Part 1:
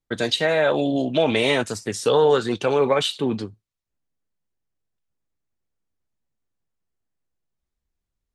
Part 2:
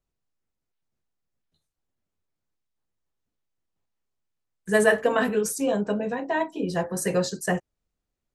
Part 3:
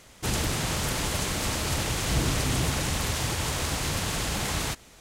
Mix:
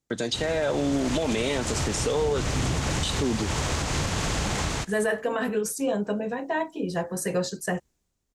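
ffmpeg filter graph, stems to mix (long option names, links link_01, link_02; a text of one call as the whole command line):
ffmpeg -i stem1.wav -i stem2.wav -i stem3.wav -filter_complex "[0:a]highpass=frequency=210:poles=1,lowshelf=frequency=430:gain=11,dynaudnorm=framelen=120:gausssize=11:maxgain=14dB,volume=0.5dB,asplit=3[link_01][link_02][link_03];[link_01]atrim=end=2.42,asetpts=PTS-STARTPTS,afade=type=out:start_time=2.416:duration=0.004:curve=hsin[link_04];[link_02]atrim=start=2.42:end=3.03,asetpts=PTS-STARTPTS,volume=0[link_05];[link_03]atrim=start=3.03,asetpts=PTS-STARTPTS,afade=type=in:duration=0.004:curve=hsin[link_06];[link_04][link_05][link_06]concat=n=3:v=0:a=1[link_07];[1:a]adelay=200,volume=-1.5dB[link_08];[2:a]aemphasis=mode=reproduction:type=75fm,dynaudnorm=framelen=560:gausssize=3:maxgain=10.5dB,adelay=100,volume=-0.5dB[link_09];[link_07][link_09]amix=inputs=2:normalize=0,equalizer=frequency=6900:width=1.2:gain=9,acompressor=threshold=-28dB:ratio=2,volume=0dB[link_10];[link_08][link_10]amix=inputs=2:normalize=0,alimiter=limit=-16.5dB:level=0:latency=1:release=88" out.wav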